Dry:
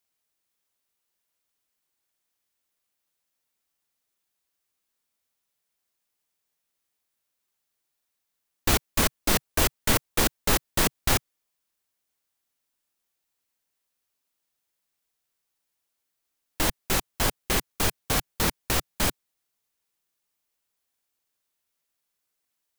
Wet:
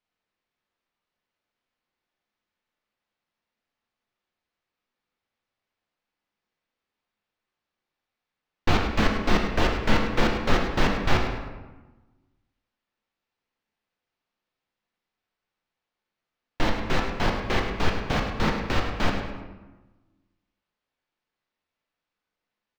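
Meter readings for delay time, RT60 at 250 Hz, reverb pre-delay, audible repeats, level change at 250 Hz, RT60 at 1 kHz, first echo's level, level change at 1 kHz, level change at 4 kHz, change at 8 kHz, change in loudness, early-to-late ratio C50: 103 ms, 1.5 s, 4 ms, 1, +5.0 dB, 1.2 s, -10.0 dB, +3.5 dB, -2.5 dB, -16.0 dB, -0.5 dB, 4.0 dB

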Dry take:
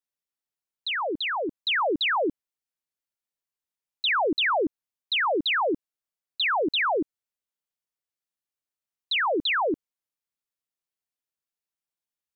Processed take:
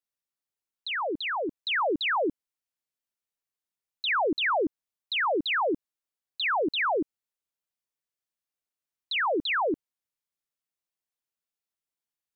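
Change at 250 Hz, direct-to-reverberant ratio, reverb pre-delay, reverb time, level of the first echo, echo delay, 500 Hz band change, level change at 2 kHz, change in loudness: -1.5 dB, no reverb, no reverb, no reverb, no echo, no echo, -1.5 dB, -2.0 dB, -2.5 dB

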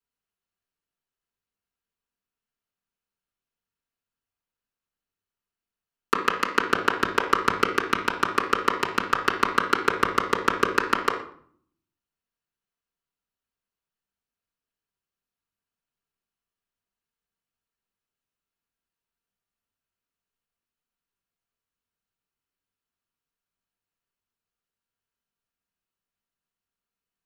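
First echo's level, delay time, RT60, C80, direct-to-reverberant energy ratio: no echo, no echo, 0.55 s, 11.0 dB, -7.5 dB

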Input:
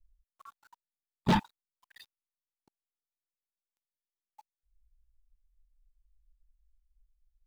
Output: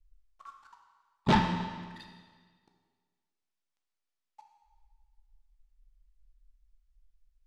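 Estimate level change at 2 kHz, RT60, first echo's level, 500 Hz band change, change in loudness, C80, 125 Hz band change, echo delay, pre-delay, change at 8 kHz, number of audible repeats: +4.0 dB, 1.6 s, no echo, +3.5 dB, +0.5 dB, 6.5 dB, +2.5 dB, no echo, 12 ms, +0.5 dB, no echo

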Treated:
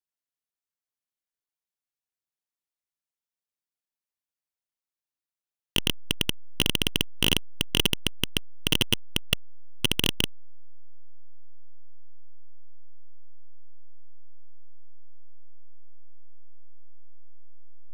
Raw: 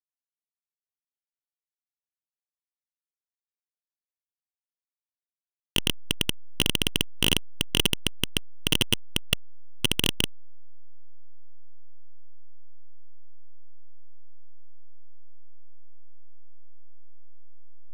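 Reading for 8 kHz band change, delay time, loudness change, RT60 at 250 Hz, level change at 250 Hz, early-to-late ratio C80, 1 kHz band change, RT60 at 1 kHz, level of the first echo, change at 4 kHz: -1.5 dB, no echo, 0.0 dB, no reverb, 0.0 dB, no reverb, 0.0 dB, no reverb, no echo, 0.0 dB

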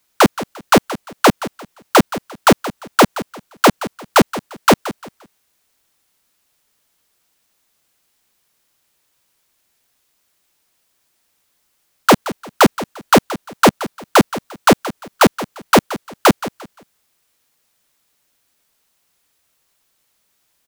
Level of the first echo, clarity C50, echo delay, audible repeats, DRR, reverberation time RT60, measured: -15.0 dB, no reverb, 174 ms, 2, no reverb, no reverb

